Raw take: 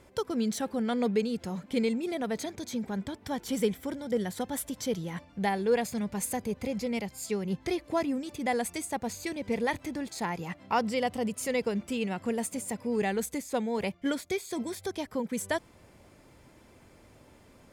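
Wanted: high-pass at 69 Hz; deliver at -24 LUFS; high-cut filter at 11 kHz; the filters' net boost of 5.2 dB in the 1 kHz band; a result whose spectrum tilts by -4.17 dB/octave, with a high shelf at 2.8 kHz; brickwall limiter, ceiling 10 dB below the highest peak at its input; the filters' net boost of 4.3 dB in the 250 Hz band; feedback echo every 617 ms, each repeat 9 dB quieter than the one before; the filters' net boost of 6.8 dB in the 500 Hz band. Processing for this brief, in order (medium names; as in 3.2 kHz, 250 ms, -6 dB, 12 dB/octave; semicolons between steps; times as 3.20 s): high-pass 69 Hz; low-pass 11 kHz; peaking EQ 250 Hz +3.5 dB; peaking EQ 500 Hz +6 dB; peaking EQ 1 kHz +4.5 dB; treble shelf 2.8 kHz -3 dB; peak limiter -19 dBFS; feedback delay 617 ms, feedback 35%, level -9 dB; trim +5 dB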